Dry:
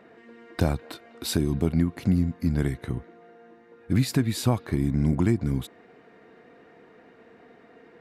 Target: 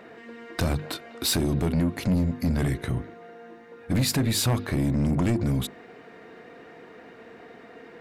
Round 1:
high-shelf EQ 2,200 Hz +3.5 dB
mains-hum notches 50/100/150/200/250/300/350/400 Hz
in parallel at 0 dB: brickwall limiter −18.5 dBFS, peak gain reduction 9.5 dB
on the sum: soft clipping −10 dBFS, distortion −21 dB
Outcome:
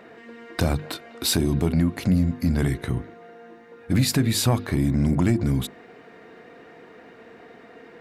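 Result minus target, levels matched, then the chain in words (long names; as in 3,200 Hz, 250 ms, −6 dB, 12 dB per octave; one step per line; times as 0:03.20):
soft clipping: distortion −10 dB
high-shelf EQ 2,200 Hz +3.5 dB
mains-hum notches 50/100/150/200/250/300/350/400 Hz
in parallel at 0 dB: brickwall limiter −18.5 dBFS, peak gain reduction 9.5 dB
on the sum: soft clipping −18 dBFS, distortion −11 dB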